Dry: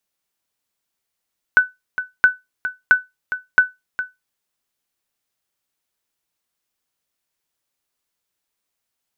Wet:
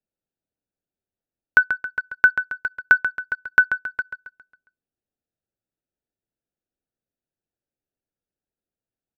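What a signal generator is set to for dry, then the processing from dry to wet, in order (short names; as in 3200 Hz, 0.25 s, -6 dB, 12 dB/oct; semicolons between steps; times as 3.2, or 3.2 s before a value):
sonar ping 1500 Hz, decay 0.19 s, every 0.67 s, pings 4, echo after 0.41 s, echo -12 dB -3 dBFS
Wiener smoothing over 41 samples; feedback echo 0.136 s, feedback 46%, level -9.5 dB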